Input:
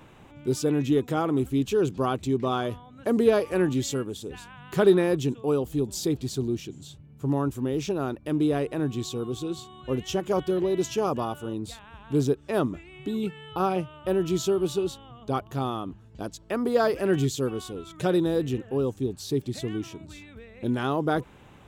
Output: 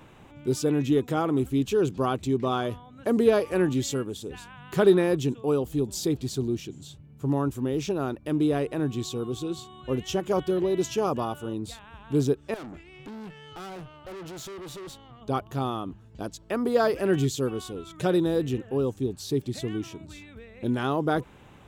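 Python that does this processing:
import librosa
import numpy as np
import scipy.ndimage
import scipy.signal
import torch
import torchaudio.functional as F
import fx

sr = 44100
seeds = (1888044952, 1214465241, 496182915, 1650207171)

y = fx.tube_stage(x, sr, drive_db=38.0, bias=0.5, at=(12.54, 15.21))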